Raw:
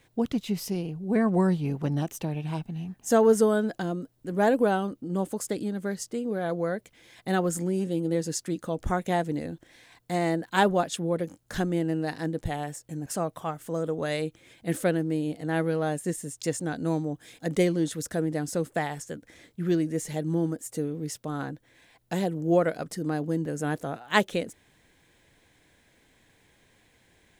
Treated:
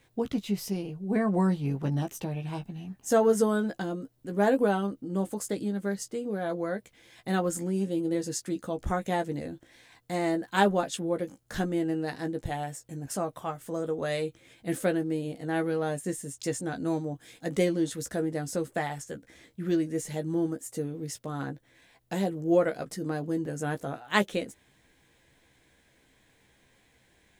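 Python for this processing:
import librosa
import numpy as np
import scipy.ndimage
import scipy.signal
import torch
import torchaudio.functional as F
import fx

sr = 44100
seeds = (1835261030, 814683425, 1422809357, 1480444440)

y = fx.doubler(x, sr, ms=15.0, db=-7.0)
y = F.gain(torch.from_numpy(y), -2.5).numpy()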